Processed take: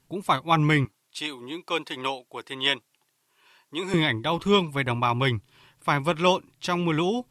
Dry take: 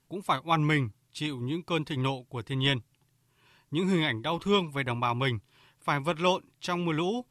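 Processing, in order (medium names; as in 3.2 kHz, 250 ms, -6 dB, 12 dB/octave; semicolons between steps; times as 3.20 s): 0.85–3.94 s: high-pass 460 Hz 12 dB/octave; trim +4.5 dB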